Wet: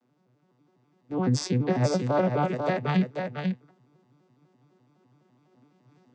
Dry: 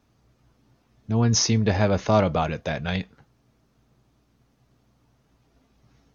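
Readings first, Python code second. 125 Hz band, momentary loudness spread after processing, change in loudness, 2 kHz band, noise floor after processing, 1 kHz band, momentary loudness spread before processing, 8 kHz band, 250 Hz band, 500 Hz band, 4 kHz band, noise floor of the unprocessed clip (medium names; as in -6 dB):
-3.0 dB, 7 LU, -4.0 dB, -3.5 dB, -68 dBFS, -2.0 dB, 9 LU, no reading, -1.0 dB, -2.0 dB, -9.5 dB, -66 dBFS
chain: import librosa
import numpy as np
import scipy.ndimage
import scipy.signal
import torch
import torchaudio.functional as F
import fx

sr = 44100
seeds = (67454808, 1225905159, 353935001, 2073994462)

y = fx.vocoder_arp(x, sr, chord='minor triad', root=47, every_ms=84)
y = scipy.signal.sosfilt(scipy.signal.butter(2, 250.0, 'highpass', fs=sr, output='sos'), y)
y = fx.rider(y, sr, range_db=10, speed_s=0.5)
y = y + 10.0 ** (-5.0 / 20.0) * np.pad(y, (int(493 * sr / 1000.0), 0))[:len(y)]
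y = y * 10.0 ** (5.0 / 20.0)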